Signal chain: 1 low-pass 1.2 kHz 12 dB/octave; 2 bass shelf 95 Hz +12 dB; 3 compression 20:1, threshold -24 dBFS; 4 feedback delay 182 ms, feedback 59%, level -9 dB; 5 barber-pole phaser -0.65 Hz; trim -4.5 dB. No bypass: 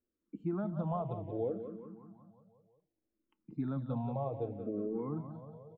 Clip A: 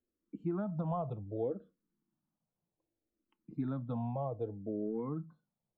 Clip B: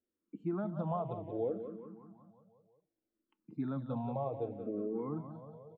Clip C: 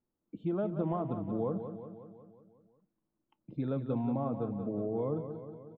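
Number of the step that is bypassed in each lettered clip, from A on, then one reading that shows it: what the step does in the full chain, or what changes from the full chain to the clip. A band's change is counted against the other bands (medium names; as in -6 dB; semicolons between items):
4, momentary loudness spread change -5 LU; 2, 125 Hz band -3.0 dB; 5, 250 Hz band +2.0 dB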